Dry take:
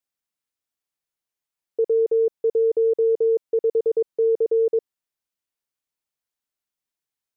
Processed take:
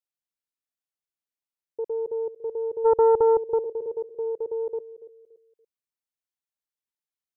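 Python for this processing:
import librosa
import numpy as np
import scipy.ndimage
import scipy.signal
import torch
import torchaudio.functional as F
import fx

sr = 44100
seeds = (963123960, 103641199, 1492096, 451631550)

y = fx.peak_eq(x, sr, hz=fx.line((2.84, 500.0), (3.58, 260.0)), db=12.0, octaves=2.1, at=(2.84, 3.58), fade=0.02)
y = fx.echo_feedback(y, sr, ms=286, feedback_pct=31, wet_db=-14.5)
y = fx.doppler_dist(y, sr, depth_ms=0.26)
y = y * librosa.db_to_amplitude(-9.0)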